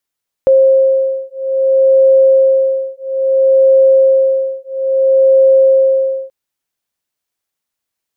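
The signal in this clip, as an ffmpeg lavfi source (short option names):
-f lavfi -i "aevalsrc='0.299*(sin(2*PI*533*t)+sin(2*PI*533.6*t))':d=5.83:s=44100"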